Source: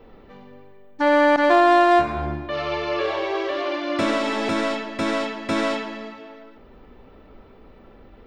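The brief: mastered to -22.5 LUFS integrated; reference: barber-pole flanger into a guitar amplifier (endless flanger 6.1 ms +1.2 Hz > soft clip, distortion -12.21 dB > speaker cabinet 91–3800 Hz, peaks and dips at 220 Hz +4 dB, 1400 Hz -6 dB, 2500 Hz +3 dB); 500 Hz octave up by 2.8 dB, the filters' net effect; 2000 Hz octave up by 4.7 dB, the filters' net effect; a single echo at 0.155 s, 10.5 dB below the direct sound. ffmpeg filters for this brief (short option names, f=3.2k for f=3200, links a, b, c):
-filter_complex "[0:a]equalizer=f=500:t=o:g=3.5,equalizer=f=2k:t=o:g=6.5,aecho=1:1:155:0.299,asplit=2[a][b];[b]adelay=6.1,afreqshift=1.2[c];[a][c]amix=inputs=2:normalize=1,asoftclip=threshold=-14.5dB,highpass=91,equalizer=f=220:t=q:w=4:g=4,equalizer=f=1.4k:t=q:w=4:g=-6,equalizer=f=2.5k:t=q:w=4:g=3,lowpass=f=3.8k:w=0.5412,lowpass=f=3.8k:w=1.3066,volume=1dB"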